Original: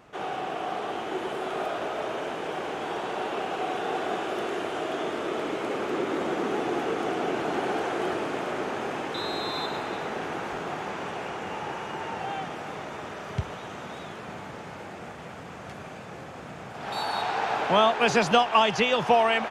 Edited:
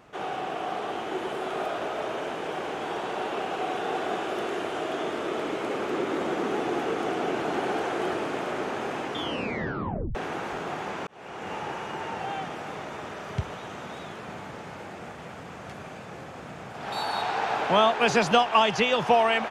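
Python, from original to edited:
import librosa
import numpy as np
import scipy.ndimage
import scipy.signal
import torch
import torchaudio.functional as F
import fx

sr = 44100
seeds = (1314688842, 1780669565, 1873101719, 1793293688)

y = fx.edit(x, sr, fx.tape_stop(start_s=9.04, length_s=1.11),
    fx.fade_in_span(start_s=11.07, length_s=0.45), tone=tone)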